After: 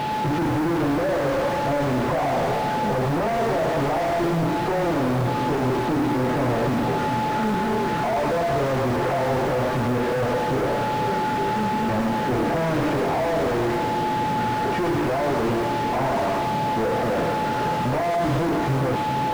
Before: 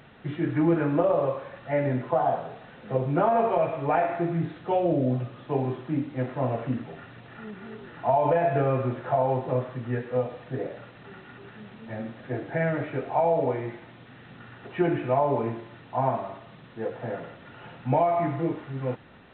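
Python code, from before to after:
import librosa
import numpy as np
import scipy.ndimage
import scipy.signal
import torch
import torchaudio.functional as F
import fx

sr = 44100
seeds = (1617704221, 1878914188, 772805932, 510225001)

p1 = fx.highpass(x, sr, hz=290.0, slope=6)
p2 = fx.tilt_shelf(p1, sr, db=6.0, hz=650.0)
p3 = fx.over_compress(p2, sr, threshold_db=-29.0, ratio=-1.0)
p4 = p2 + F.gain(torch.from_numpy(p3), 1.0).numpy()
p5 = p4 + 10.0 ** (-37.0 / 20.0) * np.sin(2.0 * np.pi * 860.0 * np.arange(len(p4)) / sr)
p6 = fx.fuzz(p5, sr, gain_db=41.0, gate_db=-45.0)
p7 = fx.dmg_noise_colour(p6, sr, seeds[0], colour='white', level_db=-43.0)
p8 = p7 + fx.echo_split(p7, sr, split_hz=680.0, low_ms=412, high_ms=106, feedback_pct=52, wet_db=-9, dry=0)
p9 = fx.slew_limit(p8, sr, full_power_hz=230.0)
y = F.gain(torch.from_numpy(p9), -8.0).numpy()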